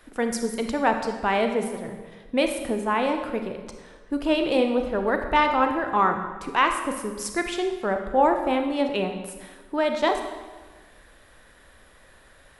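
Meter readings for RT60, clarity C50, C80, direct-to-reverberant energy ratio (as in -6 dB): 1.4 s, 6.5 dB, 8.5 dB, 5.0 dB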